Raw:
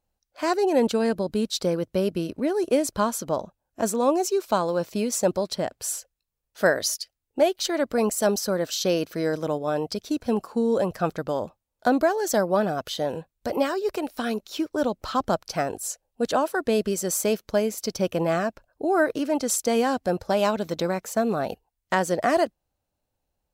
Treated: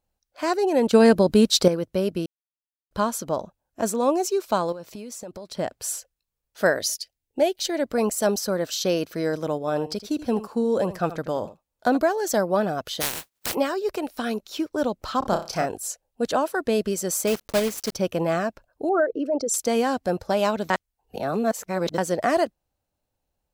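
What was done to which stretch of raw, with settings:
0.93–1.68 s: gain +8.5 dB
2.26–2.91 s: mute
4.72–5.55 s: compression 8:1, threshold -34 dBFS
6.80–7.86 s: peaking EQ 1.2 kHz -12.5 dB 0.46 oct
9.59–11.97 s: delay 80 ms -14.5 dB
13.00–13.53 s: spectral contrast reduction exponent 0.14
15.19–15.66 s: flutter echo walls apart 5.4 m, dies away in 0.31 s
17.27–17.96 s: block-companded coder 3-bit
18.89–19.54 s: resonances exaggerated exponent 2
20.70–21.98 s: reverse

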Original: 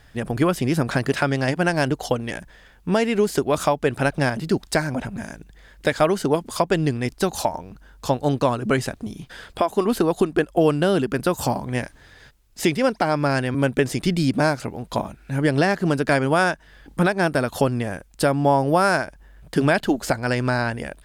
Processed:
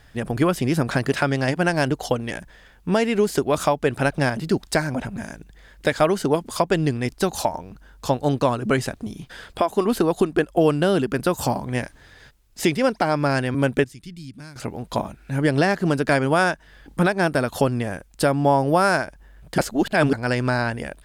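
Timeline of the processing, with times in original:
13.84–14.56 s: amplifier tone stack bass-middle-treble 6-0-2
19.58–20.13 s: reverse

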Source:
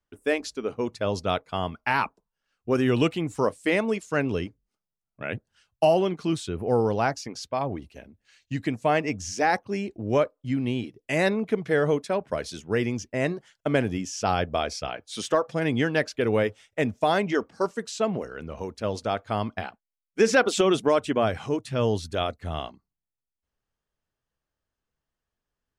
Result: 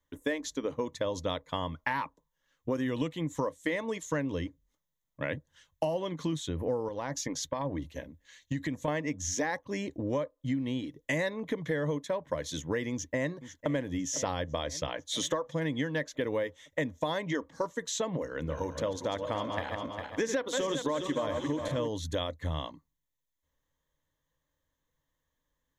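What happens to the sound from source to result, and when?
6.88–8.88 s: compression, threshold -28 dBFS
12.91–13.68 s: echo throw 500 ms, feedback 60%, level -16.5 dB
18.25–21.88 s: backward echo that repeats 202 ms, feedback 56%, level -7 dB
whole clip: rippled EQ curve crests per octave 1.1, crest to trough 11 dB; compression 6:1, threshold -31 dBFS; trim +2 dB

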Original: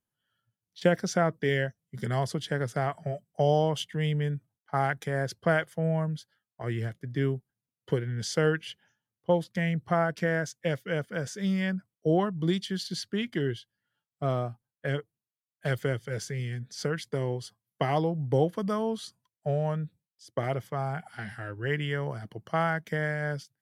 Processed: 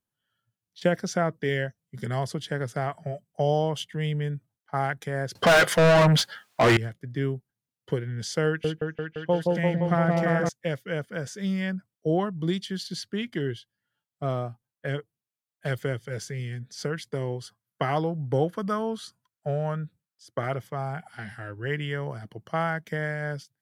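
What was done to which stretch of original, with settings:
5.35–6.77 s: overdrive pedal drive 39 dB, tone 3.8 kHz, clips at -10 dBFS
8.47–10.49 s: delay with an opening low-pass 172 ms, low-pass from 750 Hz, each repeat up 1 oct, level 0 dB
17.41–20.56 s: peaking EQ 1.4 kHz +8 dB 0.54 oct

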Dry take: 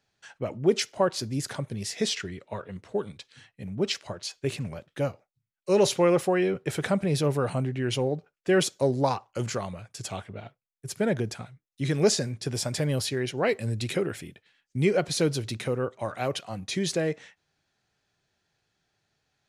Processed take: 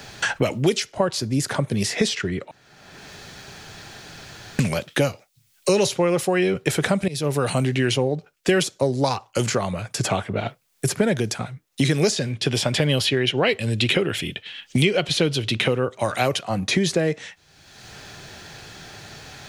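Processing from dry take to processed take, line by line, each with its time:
2.51–4.59 s: room tone
7.08–7.68 s: fade in, from -18.5 dB
12.16–15.80 s: peaking EQ 3.1 kHz +14.5 dB
whole clip: three bands compressed up and down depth 100%; trim +5 dB

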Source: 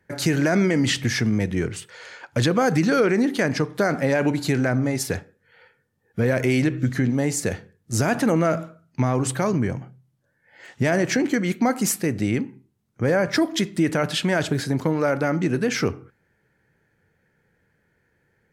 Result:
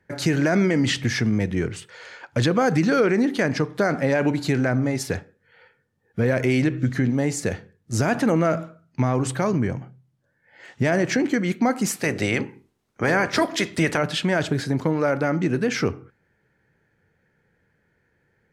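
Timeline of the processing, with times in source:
11.95–13.97 s: spectral peaks clipped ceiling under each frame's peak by 16 dB
whole clip: treble shelf 9.8 kHz -11 dB

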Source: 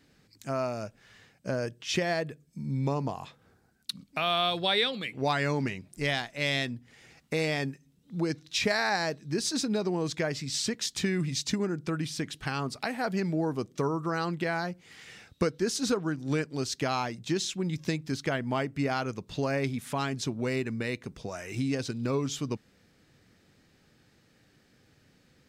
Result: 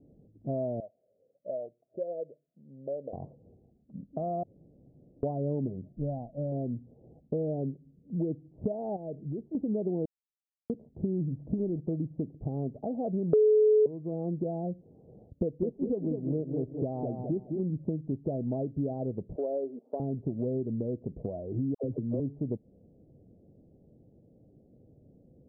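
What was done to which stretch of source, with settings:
0.80–3.13 s: talking filter a-e 1.1 Hz
4.43–5.23 s: room tone
5.92–6.52 s: peaking EQ 390 Hz -14 dB 0.41 oct
8.96–9.55 s: compression 4:1, threshold -38 dBFS
10.05–10.70 s: brick-wall FIR high-pass 2.3 kHz
11.39–11.80 s: companding laws mixed up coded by mu
13.33–13.86 s: bleep 428 Hz -6.5 dBFS
15.29–17.63 s: bit-crushed delay 207 ms, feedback 35%, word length 9-bit, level -7 dB
19.36–20.00 s: high-pass 370 Hz 24 dB/octave
21.74–22.20 s: phase dispersion lows, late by 100 ms, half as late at 750 Hz
whole clip: steep low-pass 660 Hz 48 dB/octave; compression 2.5:1, threshold -37 dBFS; trim +6 dB

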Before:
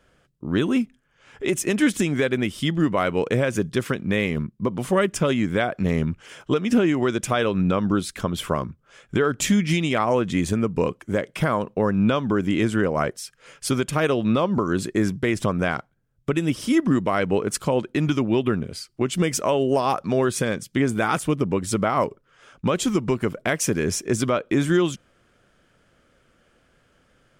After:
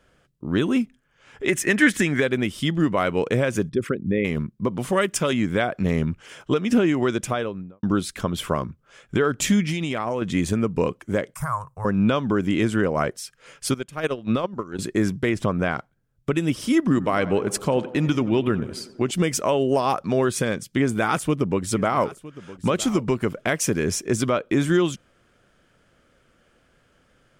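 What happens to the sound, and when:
1.48–2.20 s: peaking EQ 1.8 kHz +12 dB 0.6 oct
3.69–4.25 s: resonances exaggerated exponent 2
4.92–5.33 s: tilt EQ +1.5 dB/octave
7.12–7.83 s: studio fade out
9.64–10.22 s: compression, threshold -21 dBFS
11.34–11.85 s: FFT filter 140 Hz 0 dB, 220 Hz -30 dB, 410 Hz -25 dB, 1.1 kHz +2 dB, 3.2 kHz -24 dB, 4.6 kHz -10 dB, 7.5 kHz +5 dB
13.74–14.79 s: gate -20 dBFS, range -15 dB
15.29–15.77 s: treble shelf 4.1 kHz -7.5 dB
16.80–19.11 s: tape echo 92 ms, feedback 70%, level -13.5 dB, low-pass 2.2 kHz
20.80–23.49 s: delay 961 ms -17.5 dB

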